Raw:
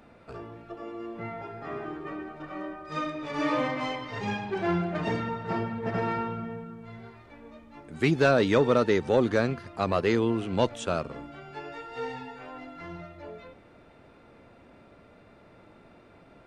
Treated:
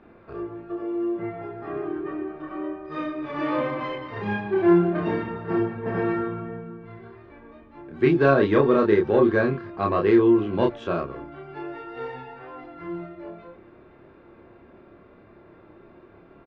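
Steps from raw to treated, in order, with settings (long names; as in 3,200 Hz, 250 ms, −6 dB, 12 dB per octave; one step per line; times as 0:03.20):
high-frequency loss of the air 290 metres
double-tracking delay 29 ms −2.5 dB
hollow resonant body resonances 360/1,100/1,600 Hz, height 12 dB, ringing for 70 ms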